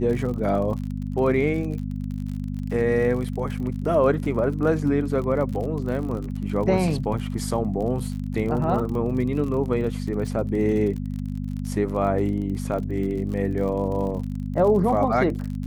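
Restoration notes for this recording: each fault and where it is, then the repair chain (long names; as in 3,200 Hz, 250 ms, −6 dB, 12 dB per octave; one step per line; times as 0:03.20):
surface crackle 44 per second −31 dBFS
mains hum 50 Hz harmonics 5 −29 dBFS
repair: click removal
hum removal 50 Hz, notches 5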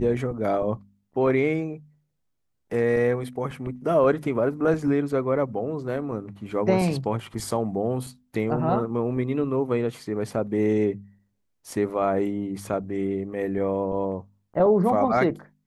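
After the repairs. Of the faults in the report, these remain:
none of them is left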